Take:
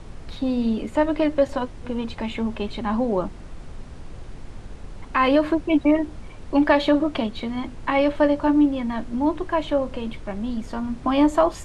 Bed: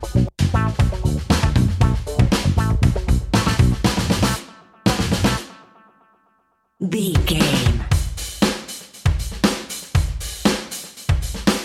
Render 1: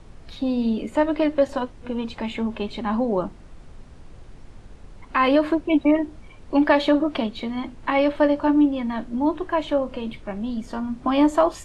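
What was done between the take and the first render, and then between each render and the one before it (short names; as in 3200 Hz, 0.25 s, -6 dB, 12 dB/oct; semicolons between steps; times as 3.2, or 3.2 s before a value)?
noise print and reduce 6 dB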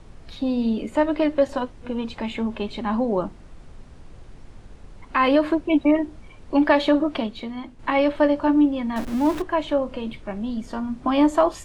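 7.05–7.79 fade out, to -7.5 dB; 8.96–9.42 zero-crossing step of -28.5 dBFS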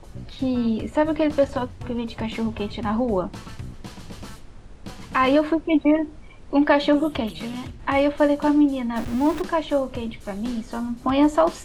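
add bed -21 dB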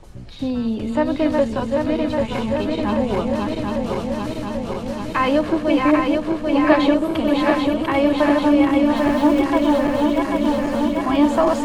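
regenerating reverse delay 0.395 s, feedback 85%, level -3 dB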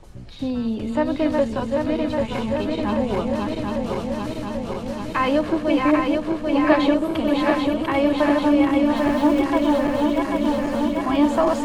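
gain -2 dB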